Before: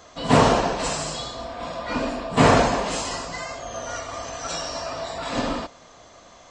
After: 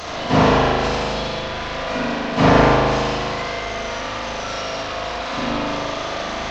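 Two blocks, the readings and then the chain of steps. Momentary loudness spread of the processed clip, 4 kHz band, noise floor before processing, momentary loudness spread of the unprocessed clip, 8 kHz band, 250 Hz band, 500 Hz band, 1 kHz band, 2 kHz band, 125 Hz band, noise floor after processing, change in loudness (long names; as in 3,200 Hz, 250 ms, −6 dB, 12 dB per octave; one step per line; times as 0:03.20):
11 LU, +4.5 dB, −49 dBFS, 15 LU, −4.0 dB, +4.5 dB, +4.0 dB, +4.0 dB, +5.5 dB, +4.5 dB, −27 dBFS, +3.5 dB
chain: linear delta modulator 32 kbit/s, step −23 dBFS
spring reverb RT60 2.1 s, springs 38 ms, chirp 35 ms, DRR −5.5 dB
level −2.5 dB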